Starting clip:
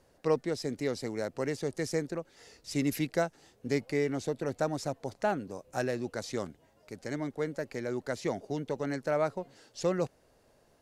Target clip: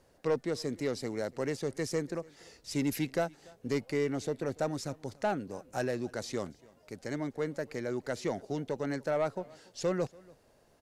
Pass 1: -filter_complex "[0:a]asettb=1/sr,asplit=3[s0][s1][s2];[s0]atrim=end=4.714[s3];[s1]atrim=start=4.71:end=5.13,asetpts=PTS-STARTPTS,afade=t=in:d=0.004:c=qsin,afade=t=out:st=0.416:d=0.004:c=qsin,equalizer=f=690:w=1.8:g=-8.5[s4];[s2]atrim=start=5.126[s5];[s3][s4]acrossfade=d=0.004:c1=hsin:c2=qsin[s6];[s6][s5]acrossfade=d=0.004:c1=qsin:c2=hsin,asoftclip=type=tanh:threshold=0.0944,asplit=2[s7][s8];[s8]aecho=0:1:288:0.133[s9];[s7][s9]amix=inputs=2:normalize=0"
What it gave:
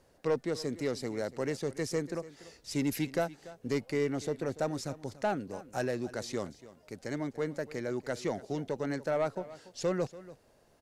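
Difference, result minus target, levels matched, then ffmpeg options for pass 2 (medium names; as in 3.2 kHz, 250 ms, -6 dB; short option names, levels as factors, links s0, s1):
echo-to-direct +7 dB
-filter_complex "[0:a]asettb=1/sr,asplit=3[s0][s1][s2];[s0]atrim=end=4.714[s3];[s1]atrim=start=4.71:end=5.13,asetpts=PTS-STARTPTS,afade=t=in:d=0.004:c=qsin,afade=t=out:st=0.416:d=0.004:c=qsin,equalizer=f=690:w=1.8:g=-8.5[s4];[s2]atrim=start=5.126[s5];[s3][s4]acrossfade=d=0.004:c1=hsin:c2=qsin[s6];[s6][s5]acrossfade=d=0.004:c1=qsin:c2=hsin,asoftclip=type=tanh:threshold=0.0944,asplit=2[s7][s8];[s8]aecho=0:1:288:0.0596[s9];[s7][s9]amix=inputs=2:normalize=0"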